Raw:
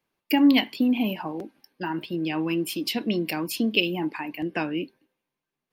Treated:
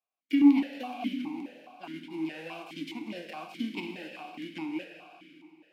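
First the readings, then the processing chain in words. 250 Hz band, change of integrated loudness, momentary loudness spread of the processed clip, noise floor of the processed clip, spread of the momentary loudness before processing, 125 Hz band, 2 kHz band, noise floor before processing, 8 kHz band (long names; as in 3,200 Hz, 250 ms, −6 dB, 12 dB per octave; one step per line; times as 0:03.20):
−4.5 dB, −5.5 dB, 21 LU, −83 dBFS, 13 LU, −15.0 dB, −11.5 dB, below −85 dBFS, −19.0 dB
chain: spectral envelope flattened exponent 0.3
four-comb reverb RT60 2.9 s, DRR 5 dB
formant filter that steps through the vowels 4.8 Hz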